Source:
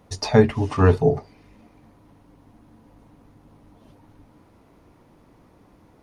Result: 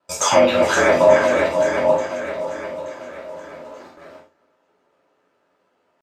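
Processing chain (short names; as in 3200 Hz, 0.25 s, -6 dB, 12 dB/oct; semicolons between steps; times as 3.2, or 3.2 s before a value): reverse delay 0.496 s, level -9 dB; in parallel at -4.5 dB: soft clip -10.5 dBFS, distortion -13 dB; on the sum: air absorption 69 m; on a send: swung echo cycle 0.882 s, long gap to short 1.5:1, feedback 37%, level -10.5 dB; on the sum: limiter -11 dBFS, peak gain reduction 11 dB; pitch shift +5 st; HPF 410 Hz 12 dB/oct; gate with hold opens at -39 dBFS; ring modulator 45 Hz; non-linear reverb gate 0.14 s falling, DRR -7 dB; gain +4.5 dB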